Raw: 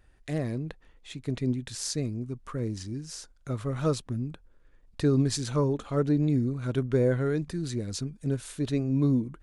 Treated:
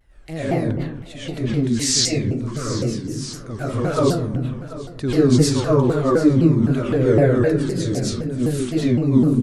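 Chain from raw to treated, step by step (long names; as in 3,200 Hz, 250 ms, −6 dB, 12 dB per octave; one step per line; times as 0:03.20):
comb and all-pass reverb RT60 0.84 s, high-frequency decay 0.4×, pre-delay 75 ms, DRR −10 dB
gain on a spectral selection 0:01.80–0:02.41, 1,700–8,600 Hz +8 dB
on a send: single-tap delay 737 ms −15.5 dB
on the sum: pitch modulation by a square or saw wave saw down 3.9 Hz, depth 250 cents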